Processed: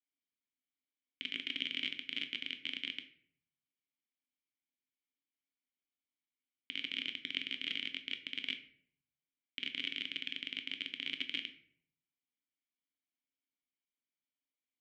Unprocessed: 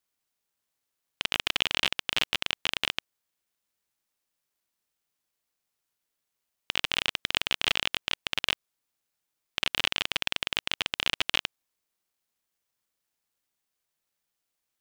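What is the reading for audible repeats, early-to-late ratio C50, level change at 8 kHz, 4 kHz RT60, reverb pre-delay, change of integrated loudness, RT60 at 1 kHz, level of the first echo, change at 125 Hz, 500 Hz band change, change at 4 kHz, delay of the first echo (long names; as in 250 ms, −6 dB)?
no echo audible, 12.5 dB, below −25 dB, 0.40 s, 5 ms, −10.5 dB, 0.50 s, no echo audible, −18.5 dB, −19.5 dB, −10.0 dB, no echo audible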